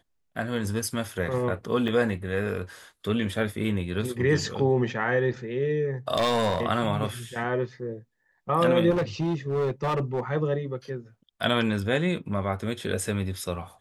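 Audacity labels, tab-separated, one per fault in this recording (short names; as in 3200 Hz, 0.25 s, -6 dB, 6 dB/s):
1.880000	1.880000	gap 2.1 ms
6.160000	6.630000	clipped -19.5 dBFS
8.900000	10.200000	clipped -22 dBFS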